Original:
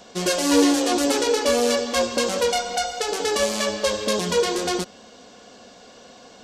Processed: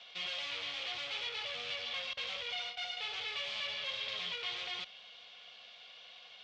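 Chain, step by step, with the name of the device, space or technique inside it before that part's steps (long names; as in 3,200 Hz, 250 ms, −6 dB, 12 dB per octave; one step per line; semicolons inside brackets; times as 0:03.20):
0:02.13–0:02.97: noise gate with hold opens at −17 dBFS
low-shelf EQ 370 Hz −11.5 dB
scooped metal amplifier (tube saturation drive 35 dB, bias 0.7; loudspeaker in its box 110–3,600 Hz, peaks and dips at 120 Hz +3 dB, 980 Hz −5 dB, 1,600 Hz −7 dB, 2,300 Hz +5 dB, 3,300 Hz +7 dB; guitar amp tone stack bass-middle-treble 10-0-10)
level +4.5 dB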